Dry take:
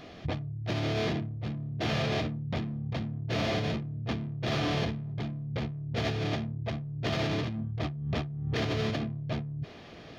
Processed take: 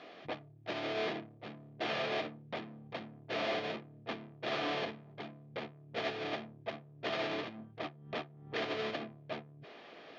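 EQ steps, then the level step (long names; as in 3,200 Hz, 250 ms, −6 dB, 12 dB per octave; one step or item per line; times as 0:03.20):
high-pass filter 390 Hz 12 dB per octave
low-pass filter 3,800 Hz 12 dB per octave
−2.0 dB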